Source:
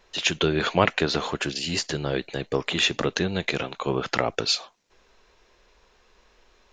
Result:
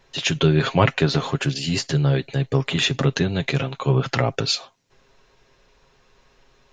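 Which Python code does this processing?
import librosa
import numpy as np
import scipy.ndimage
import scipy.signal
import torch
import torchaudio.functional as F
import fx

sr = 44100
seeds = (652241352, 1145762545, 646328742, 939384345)

y = fx.peak_eq(x, sr, hz=130.0, db=12.0, octaves=1.2)
y = y + 0.45 * np.pad(y, (int(7.4 * sr / 1000.0), 0))[:len(y)]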